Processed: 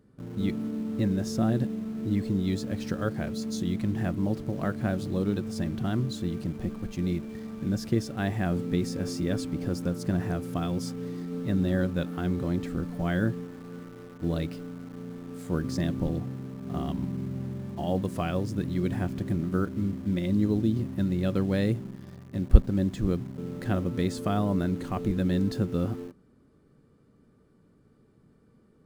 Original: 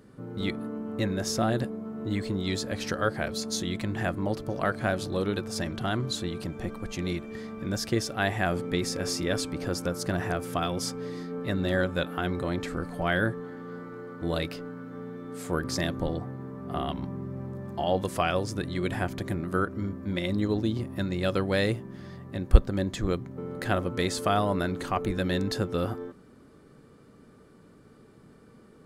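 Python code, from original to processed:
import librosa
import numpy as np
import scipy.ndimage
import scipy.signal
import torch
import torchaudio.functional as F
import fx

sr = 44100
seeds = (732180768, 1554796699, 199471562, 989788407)

p1 = fx.dynamic_eq(x, sr, hz=210.0, q=0.8, threshold_db=-42.0, ratio=4.0, max_db=7)
p2 = fx.quant_dither(p1, sr, seeds[0], bits=6, dither='none')
p3 = p1 + (p2 * 10.0 ** (-6.0 / 20.0))
p4 = fx.low_shelf(p3, sr, hz=330.0, db=8.5)
y = p4 * 10.0 ** (-12.0 / 20.0)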